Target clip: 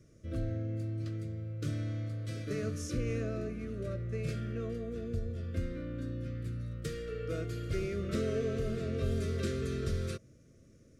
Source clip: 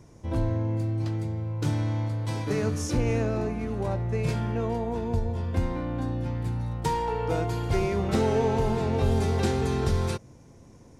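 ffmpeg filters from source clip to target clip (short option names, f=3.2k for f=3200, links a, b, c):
-af "asuperstop=centerf=860:order=20:qfactor=1.9,volume=-8.5dB"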